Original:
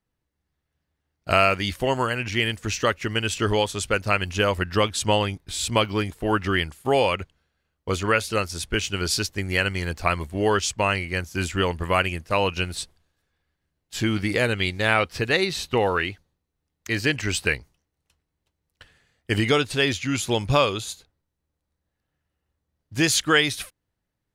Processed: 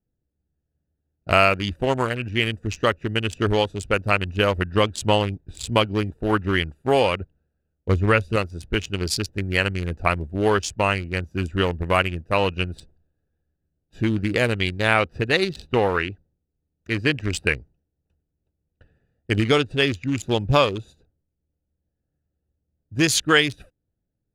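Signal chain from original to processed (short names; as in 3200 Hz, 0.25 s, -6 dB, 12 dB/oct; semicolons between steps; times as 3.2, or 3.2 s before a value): Wiener smoothing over 41 samples; 7.89–8.36 low shelf 130 Hz +11.5 dB; gain +2.5 dB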